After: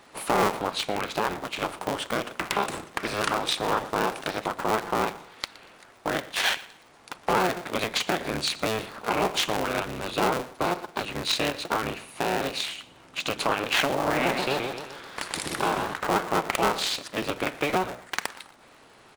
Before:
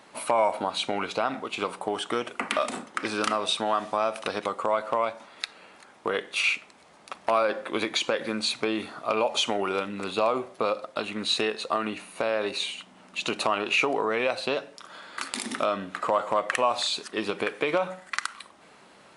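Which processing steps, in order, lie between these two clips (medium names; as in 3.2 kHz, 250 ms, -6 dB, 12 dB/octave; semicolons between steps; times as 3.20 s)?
cycle switcher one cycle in 3, inverted; feedback delay 118 ms, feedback 32%, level -19.5 dB; 13.93–15.94 s: modulated delay 130 ms, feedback 47%, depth 188 cents, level -5 dB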